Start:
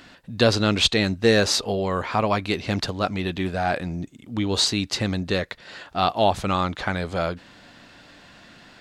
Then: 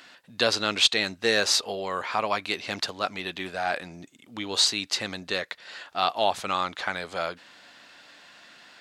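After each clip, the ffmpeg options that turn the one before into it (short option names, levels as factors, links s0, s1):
-af "highpass=f=940:p=1"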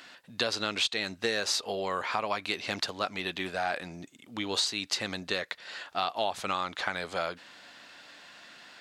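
-af "acompressor=threshold=0.0501:ratio=5"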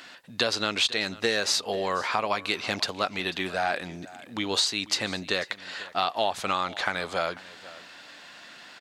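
-af "aecho=1:1:492:0.112,volume=1.58"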